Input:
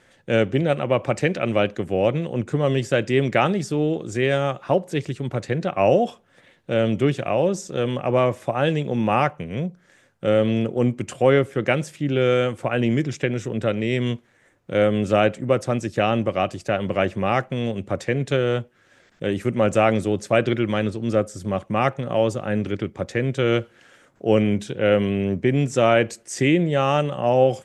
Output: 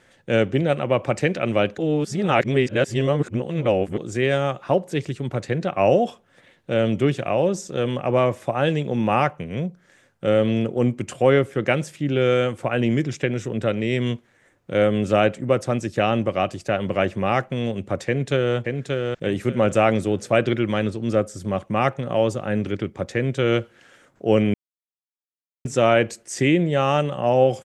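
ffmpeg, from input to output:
-filter_complex "[0:a]asplit=2[a][b];[b]afade=t=in:st=18.06:d=0.01,afade=t=out:st=18.56:d=0.01,aecho=0:1:580|1160|1740:0.630957|0.157739|0.0394348[c];[a][c]amix=inputs=2:normalize=0,asplit=5[d][e][f][g][h];[d]atrim=end=1.782[i];[e]atrim=start=1.778:end=3.982,asetpts=PTS-STARTPTS,areverse[j];[f]atrim=start=3.978:end=24.54,asetpts=PTS-STARTPTS,afade=t=out:st=20.558:d=0.004:c=hsin[k];[g]atrim=start=24.54:end=25.65,asetpts=PTS-STARTPTS,volume=0[l];[h]atrim=start=25.65,asetpts=PTS-STARTPTS,afade=t=in:d=0.004:c=hsin[m];[i][j]acrossfade=d=0.004:c1=hsin:c2=hsin[n];[k][l][m]concat=n=3:v=0:a=1[o];[n][o]acrossfade=d=0.004:c1=hsin:c2=hsin"

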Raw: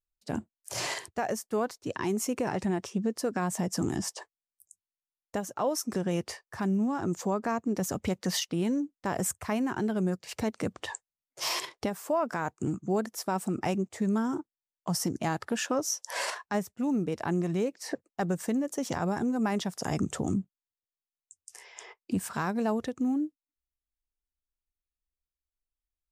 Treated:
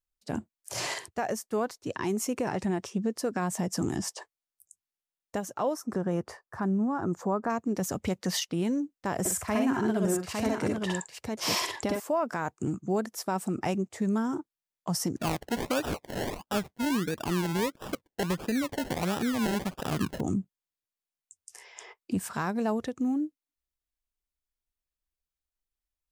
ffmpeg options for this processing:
-filter_complex "[0:a]asettb=1/sr,asplit=3[a][b][c];[a]atrim=end=5.744[d];[b]atrim=start=5.74:end=7.5,asetpts=PTS-STARTPTS,afade=t=in:d=0.004:c=qsin,afade=t=out:st=1.756:d=0.004:c=qsin,highshelf=f=1.9k:t=q:w=1.5:g=-9[e];[c]atrim=start=7.496[f];[d][e]acrossfade=d=0.004:c1=hsin:c2=qsin[g];[g][f]acrossfade=d=0.004:c1=qsin:c2=hsin,asettb=1/sr,asplit=3[h][i][j];[h]atrim=end=9.194[k];[i]atrim=start=9.19:end=12,asetpts=PTS-STARTPTS,afade=t=in:d=0.004:c=qsin,afade=t=out:st=2.806:d=0.004:c=qsin,aecho=1:1:61|64|108|855:0.596|0.708|0.299|0.631,atrim=end_sample=123921[l];[j]atrim=start=11.996[m];[k][l]acrossfade=d=0.004:c1=hsin:c2=qsin[n];[n][m]acrossfade=d=0.004:c1=qsin:c2=hsin,asplit=3[o][p][q];[o]afade=t=out:st=15.16:d=0.02[r];[p]acrusher=samples=29:mix=1:aa=0.000001:lfo=1:lforange=17.4:lforate=1.5,afade=t=in:st=15.16:d=0.02,afade=t=out:st=20.19:d=0.02[s];[q]afade=t=in:st=20.19:d=0.02[t];[r][s][t]amix=inputs=3:normalize=0"

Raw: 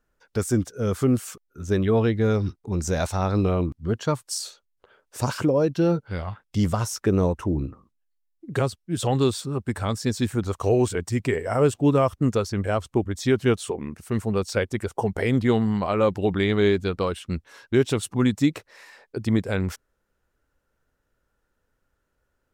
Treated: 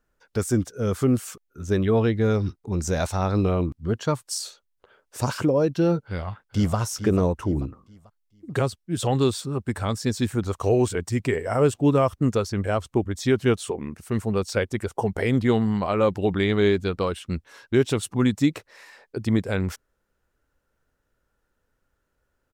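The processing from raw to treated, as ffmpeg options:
-filter_complex "[0:a]asplit=2[a][b];[b]afade=t=in:st=6.05:d=0.01,afade=t=out:st=6.77:d=0.01,aecho=0:1:440|880|1320|1760:0.298538|0.104488|0.0365709|0.0127998[c];[a][c]amix=inputs=2:normalize=0"

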